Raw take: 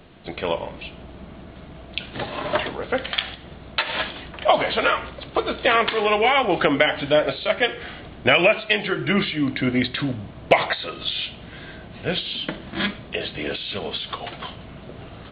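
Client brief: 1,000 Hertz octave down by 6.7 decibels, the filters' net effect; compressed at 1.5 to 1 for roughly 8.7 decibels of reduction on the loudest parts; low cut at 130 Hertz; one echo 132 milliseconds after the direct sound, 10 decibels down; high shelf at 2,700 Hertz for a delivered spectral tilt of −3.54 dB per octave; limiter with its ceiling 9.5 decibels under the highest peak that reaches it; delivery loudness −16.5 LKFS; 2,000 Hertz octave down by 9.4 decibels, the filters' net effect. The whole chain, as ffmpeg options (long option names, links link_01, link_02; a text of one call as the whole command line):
ffmpeg -i in.wav -af "highpass=130,equalizer=frequency=1000:width_type=o:gain=-7,equalizer=frequency=2000:width_type=o:gain=-7.5,highshelf=frequency=2700:gain=-5.5,acompressor=threshold=-40dB:ratio=1.5,alimiter=limit=-23.5dB:level=0:latency=1,aecho=1:1:132:0.316,volume=19.5dB" out.wav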